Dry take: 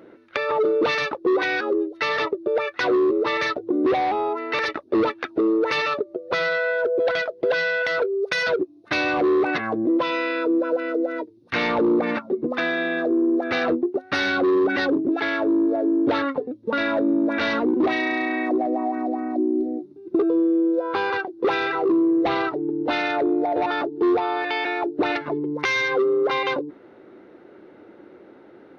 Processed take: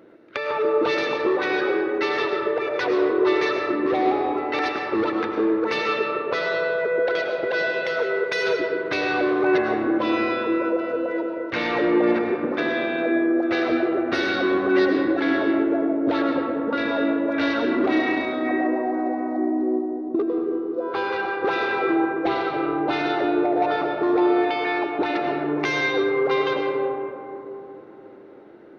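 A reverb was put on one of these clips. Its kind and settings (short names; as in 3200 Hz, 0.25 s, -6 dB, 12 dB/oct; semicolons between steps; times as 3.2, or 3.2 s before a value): digital reverb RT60 3.3 s, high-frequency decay 0.3×, pre-delay 65 ms, DRR 1 dB; gain -3 dB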